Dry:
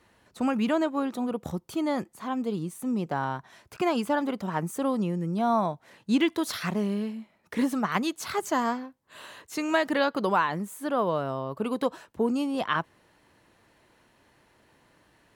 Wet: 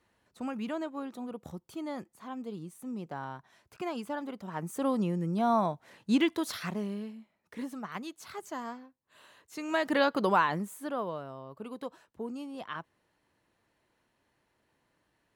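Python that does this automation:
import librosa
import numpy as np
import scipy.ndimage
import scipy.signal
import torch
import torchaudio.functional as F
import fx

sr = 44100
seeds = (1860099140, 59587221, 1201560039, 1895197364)

y = fx.gain(x, sr, db=fx.line((4.45, -10.0), (4.87, -2.0), (6.15, -2.0), (7.57, -12.5), (9.42, -12.5), (9.96, -1.0), (10.53, -1.0), (11.29, -12.5)))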